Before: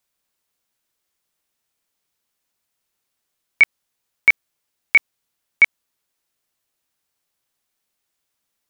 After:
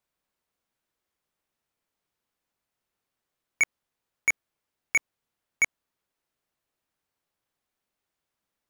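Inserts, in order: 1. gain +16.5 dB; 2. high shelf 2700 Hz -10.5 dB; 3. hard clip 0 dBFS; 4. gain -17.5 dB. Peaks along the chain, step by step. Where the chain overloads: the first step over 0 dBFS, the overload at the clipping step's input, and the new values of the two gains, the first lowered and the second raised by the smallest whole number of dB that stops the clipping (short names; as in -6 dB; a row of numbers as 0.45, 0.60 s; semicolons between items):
+12.0, +8.5, 0.0, -17.5 dBFS; step 1, 8.5 dB; step 1 +7.5 dB, step 4 -8.5 dB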